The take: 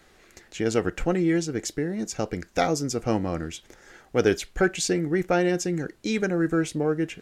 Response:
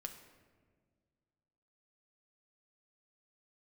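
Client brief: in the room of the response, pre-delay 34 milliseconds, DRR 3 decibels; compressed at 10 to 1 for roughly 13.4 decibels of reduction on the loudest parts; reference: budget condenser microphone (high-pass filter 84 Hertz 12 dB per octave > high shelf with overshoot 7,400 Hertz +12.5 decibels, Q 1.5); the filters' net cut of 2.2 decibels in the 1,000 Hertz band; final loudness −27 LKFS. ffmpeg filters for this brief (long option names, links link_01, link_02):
-filter_complex "[0:a]equalizer=frequency=1000:width_type=o:gain=-3.5,acompressor=threshold=-30dB:ratio=10,asplit=2[link_01][link_02];[1:a]atrim=start_sample=2205,adelay=34[link_03];[link_02][link_03]afir=irnorm=-1:irlink=0,volume=0.5dB[link_04];[link_01][link_04]amix=inputs=2:normalize=0,highpass=84,highshelf=frequency=7400:width_type=q:width=1.5:gain=12.5,volume=5.5dB"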